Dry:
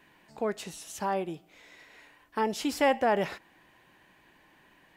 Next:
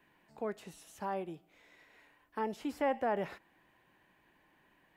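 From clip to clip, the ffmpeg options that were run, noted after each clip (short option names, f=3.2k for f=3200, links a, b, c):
-filter_complex "[0:a]equalizer=f=5.7k:w=0.65:g=-5.5,acrossover=split=340|2200[a][b][c];[c]alimiter=level_in=16dB:limit=-24dB:level=0:latency=1:release=86,volume=-16dB[d];[a][b][d]amix=inputs=3:normalize=0,volume=-7dB"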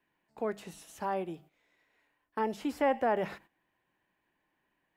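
-af "bandreject=f=50:t=h:w=6,bandreject=f=100:t=h:w=6,bandreject=f=150:t=h:w=6,bandreject=f=200:t=h:w=6,agate=range=-14dB:threshold=-58dB:ratio=16:detection=peak,volume=4dB"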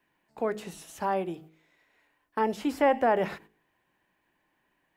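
-af "bandreject=f=53.12:t=h:w=4,bandreject=f=106.24:t=h:w=4,bandreject=f=159.36:t=h:w=4,bandreject=f=212.48:t=h:w=4,bandreject=f=265.6:t=h:w=4,bandreject=f=318.72:t=h:w=4,bandreject=f=371.84:t=h:w=4,bandreject=f=424.96:t=h:w=4,bandreject=f=478.08:t=h:w=4,volume=5dB"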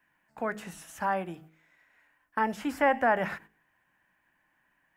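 -af "equalizer=f=400:t=o:w=0.67:g=-9,equalizer=f=1.6k:t=o:w=0.67:g=7,equalizer=f=4k:t=o:w=0.67:g=-6"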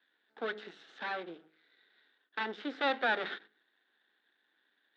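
-af "aeval=exprs='max(val(0),0)':c=same,highpass=f=260:w=0.5412,highpass=f=260:w=1.3066,equalizer=f=420:t=q:w=4:g=6,equalizer=f=620:t=q:w=4:g=-5,equalizer=f=1k:t=q:w=4:g=-9,equalizer=f=1.5k:t=q:w=4:g=5,equalizer=f=2.5k:t=q:w=4:g=-5,equalizer=f=3.7k:t=q:w=4:g=10,lowpass=f=4k:w=0.5412,lowpass=f=4k:w=1.3066"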